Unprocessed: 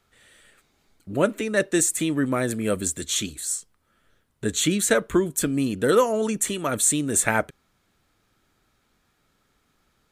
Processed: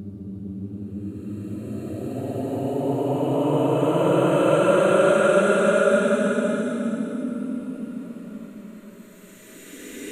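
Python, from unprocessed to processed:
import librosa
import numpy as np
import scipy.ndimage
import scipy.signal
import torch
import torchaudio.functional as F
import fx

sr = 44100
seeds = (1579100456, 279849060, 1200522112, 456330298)

y = fx.hum_notches(x, sr, base_hz=60, count=3)
y = fx.paulstretch(y, sr, seeds[0], factor=35.0, window_s=0.1, from_s=1.09)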